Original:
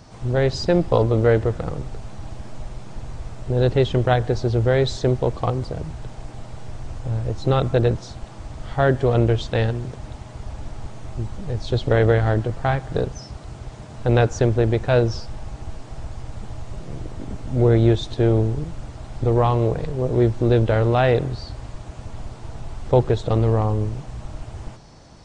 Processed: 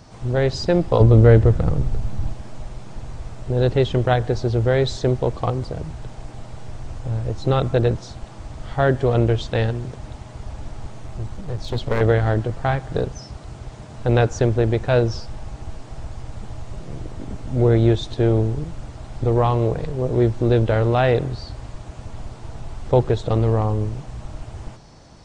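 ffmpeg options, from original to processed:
ffmpeg -i in.wav -filter_complex "[0:a]asettb=1/sr,asplit=3[link_01][link_02][link_03];[link_01]atrim=end=1.004[link_04];[link_02]atrim=start=1:end=2.32,asetpts=PTS-STARTPTS,afade=type=in:duration=0.004:curve=qsin,afade=type=out:start_time=1.316:duration=0.004:curve=qsin,lowshelf=frequency=230:gain=11.5[link_05];[link_03]atrim=start=2.316[link_06];[link_04][link_05]acrossfade=duration=0.004:curve1=hsin:curve2=qsin[link_07];[link_07][link_06]acrossfade=duration=0.004:curve1=qsin:curve2=hsin,asettb=1/sr,asplit=3[link_08][link_09][link_10];[link_08]atrim=end=10.834[link_11];[link_09]atrim=start=10.83:end=12.01,asetpts=PTS-STARTPTS,afade=type=in:duration=0.004:curve=qsin,afade=type=out:start_time=1.176:duration=0.004:curve=qsin,aeval=exprs='clip(val(0),-1,0.0447)':channel_layout=same[link_12];[link_10]atrim=start=12.006[link_13];[link_11][link_12]acrossfade=duration=0.004:curve1=hsin:curve2=qsin[link_14];[link_14][link_13]acrossfade=duration=0.004:curve1=qsin:curve2=hsin" out.wav

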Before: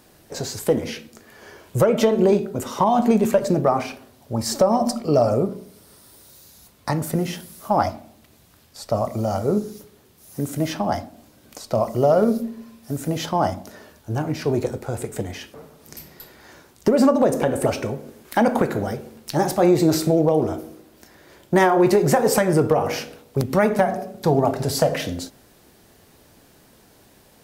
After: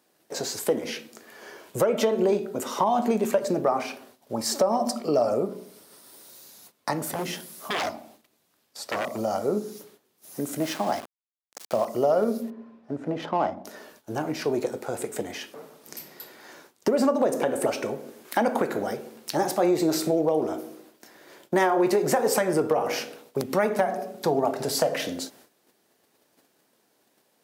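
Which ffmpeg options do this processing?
ffmpeg -i in.wav -filter_complex "[0:a]asettb=1/sr,asplit=3[link_01][link_02][link_03];[link_01]atrim=end=7.054[link_04];[link_02]atrim=start=7.05:end=9.18,asetpts=PTS-STARTPTS,afade=type=in:duration=0.004:curve=qsin,afade=type=out:start_time=2.126:duration=0.004:curve=qsin,aeval=exprs='0.0944*(abs(mod(val(0)/0.0944+3,4)-2)-1)':channel_layout=same[link_05];[link_03]atrim=start=9.176[link_06];[link_04][link_05]acrossfade=duration=0.004:curve1=hsin:curve2=qsin[link_07];[link_07][link_06]acrossfade=duration=0.004:curve1=qsin:curve2=hsin,asettb=1/sr,asplit=3[link_08][link_09][link_10];[link_08]atrim=end=10.614[link_11];[link_09]atrim=start=10.61:end=11.85,asetpts=PTS-STARTPTS,afade=type=in:duration=0.004:curve=qsin,afade=type=out:start_time=1.236:duration=0.004:curve=qsin,aeval=exprs='val(0)*gte(abs(val(0)),0.0266)':channel_layout=same[link_12];[link_10]atrim=start=11.846[link_13];[link_11][link_12]acrossfade=duration=0.004:curve1=hsin:curve2=qsin[link_14];[link_14][link_13]acrossfade=duration=0.004:curve1=qsin:curve2=hsin,asettb=1/sr,asplit=3[link_15][link_16][link_17];[link_15]atrim=end=12.504[link_18];[link_16]atrim=start=12.5:end=13.65,asetpts=PTS-STARTPTS,afade=type=in:duration=0.004:curve=qsin,afade=type=out:start_time=1.146:duration=0.004:curve=qsin,adynamicsmooth=sensitivity=1:basefreq=1500[link_19];[link_17]atrim=start=13.646[link_20];[link_18][link_19]acrossfade=duration=0.004:curve1=hsin:curve2=qsin[link_21];[link_21][link_20]acrossfade=duration=0.004:curve1=qsin:curve2=hsin,agate=range=-13dB:threshold=-50dB:ratio=16:detection=peak,highpass=260,acompressor=threshold=-26dB:ratio=1.5" out.wav

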